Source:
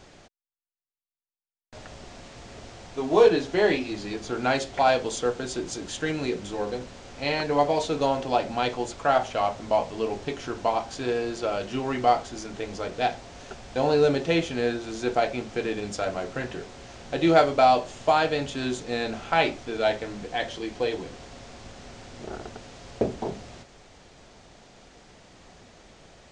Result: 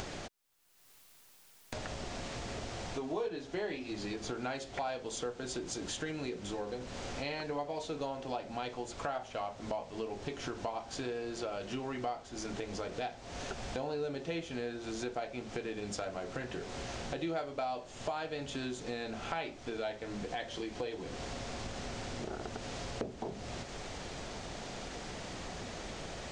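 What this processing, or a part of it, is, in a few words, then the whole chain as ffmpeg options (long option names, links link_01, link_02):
upward and downward compression: -af "acompressor=mode=upward:threshold=-26dB:ratio=2.5,acompressor=threshold=-32dB:ratio=4,volume=-4dB"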